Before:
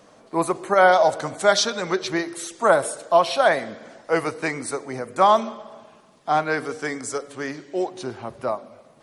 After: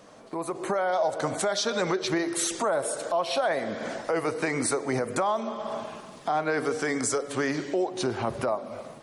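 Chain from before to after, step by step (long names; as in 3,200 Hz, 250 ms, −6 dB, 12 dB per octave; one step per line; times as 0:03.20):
dynamic equaliser 480 Hz, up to +4 dB, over −29 dBFS, Q 0.78
downward compressor 8 to 1, threshold −31 dBFS, peak gain reduction 22.5 dB
brickwall limiter −28 dBFS, peak gain reduction 9 dB
automatic gain control gain up to 10.5 dB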